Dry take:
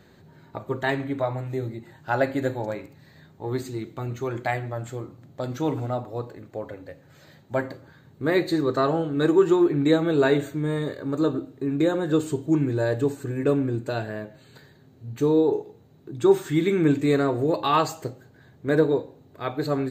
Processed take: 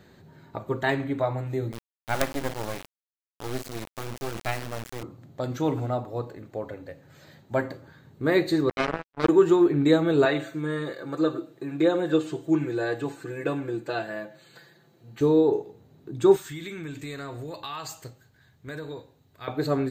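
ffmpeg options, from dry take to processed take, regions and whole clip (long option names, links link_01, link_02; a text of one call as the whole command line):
ffmpeg -i in.wav -filter_complex "[0:a]asettb=1/sr,asplit=3[link_01][link_02][link_03];[link_01]atrim=end=1.724[link_04];[link_02]atrim=start=1.72:end=5.03,asetpts=PTS-STARTPTS,afade=type=in:duration=0.004:curve=qsin,afade=type=out:start_time=3.306:duration=0.004:curve=qsin,lowshelf=frequency=420:gain=-2,acrusher=bits=3:dc=4:mix=0:aa=0.000001[link_05];[link_03]atrim=start=5.026[link_06];[link_04][link_05]acrossfade=duration=0.004:curve1=hsin:curve2=qsin[link_07];[link_07][link_06]acrossfade=duration=0.004:curve1=qsin:curve2=hsin,asettb=1/sr,asplit=3[link_08][link_09][link_10];[link_08]atrim=end=8.694[link_11];[link_09]atrim=start=8.69:end=9.29,asetpts=PTS-STARTPTS,afade=type=in:duration=0.004:curve=qsin,afade=type=out:start_time=0.596:duration=0.004:curve=qsin,highshelf=frequency=2100:gain=-9.5,acrusher=bits=2:mix=0:aa=0.5[link_12];[link_10]atrim=start=9.286[link_13];[link_11][link_12]acrossfade=duration=0.004:curve1=hsin:curve2=qsin[link_14];[link_14][link_13]acrossfade=duration=0.004:curve1=qsin:curve2=hsin,asettb=1/sr,asplit=3[link_15][link_16][link_17];[link_15]atrim=end=10.254[link_18];[link_16]atrim=start=10.25:end=15.21,asetpts=PTS-STARTPTS,afade=type=in:duration=0.004:curve=qsin,afade=type=out:start_time=4.956:duration=0.004:curve=qsin,acrossover=split=5000[link_19][link_20];[link_20]acompressor=threshold=-59dB:ratio=4:attack=1:release=60[link_21];[link_19][link_21]amix=inputs=2:normalize=0,highpass=frequency=450:poles=1,aecho=1:1:5.9:0.72,atrim=end_sample=218736[link_22];[link_17]atrim=start=15.206[link_23];[link_18][link_22]acrossfade=duration=0.004:curve1=hsin:curve2=qsin[link_24];[link_24][link_23]acrossfade=duration=0.004:curve1=qsin:curve2=hsin,asettb=1/sr,asplit=3[link_25][link_26][link_27];[link_25]atrim=end=16.364[link_28];[link_26]atrim=start=16.36:end=19.48,asetpts=PTS-STARTPTS,afade=type=in:duration=0.004:curve=qsin,afade=type=out:start_time=3.116:duration=0.004:curve=qsin,equalizer=frequency=360:width=0.37:gain=-14,acompressor=threshold=-32dB:ratio=5:attack=3.2:release=140:knee=1:detection=peak[link_29];[link_27]atrim=start=19.476[link_30];[link_28][link_29]acrossfade=duration=0.004:curve1=hsin:curve2=qsin[link_31];[link_31][link_30]acrossfade=duration=0.004:curve1=qsin:curve2=hsin" out.wav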